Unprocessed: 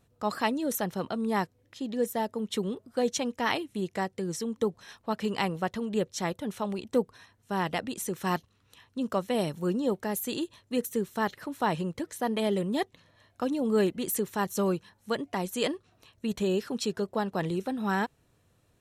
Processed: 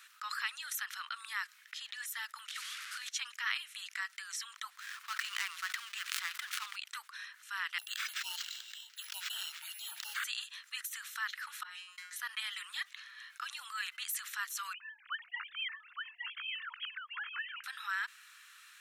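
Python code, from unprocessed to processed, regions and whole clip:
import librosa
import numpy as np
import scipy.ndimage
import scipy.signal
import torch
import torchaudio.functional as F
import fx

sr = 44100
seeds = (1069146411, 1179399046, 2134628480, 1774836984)

y = fx.chain(x, sr, fx.delta_mod(bps=64000, step_db=-40.0),
    fx.highpass(hz=1200.0, slope=12),
    fx.over_compress(threshold_db=-42.0, ratio=-0.5), at=(2.48, 3.09))
y = fx.chain(y, sr, fx.dead_time(dead_ms=0.11),
    fx.sustainer(db_per_s=51.0), at=(4.76, 6.76))
y = fx.chain(y, sr, fx.brickwall_bandstop(low_hz=970.0, high_hz=2700.0),
    fx.resample_bad(factor=4, down='none', up='hold'),
    fx.sustainer(db_per_s=80.0), at=(7.78, 10.24))
y = fx.chain(y, sr, fx.over_compress(threshold_db=-34.0, ratio=-1.0),
    fx.comb_fb(f0_hz=180.0, decay_s=0.31, harmonics='all', damping=0.0, mix_pct=100), at=(11.63, 12.16))
y = fx.chain(y, sr, fx.sine_speech(),
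    fx.echo_single(ms=866, db=-5.5), at=(14.73, 17.64))
y = scipy.signal.sosfilt(scipy.signal.butter(8, 1300.0, 'highpass', fs=sr, output='sos'), y)
y = fx.high_shelf(y, sr, hz=4100.0, db=-8.5)
y = fx.env_flatten(y, sr, amount_pct=50)
y = F.gain(torch.from_numpy(y), -2.5).numpy()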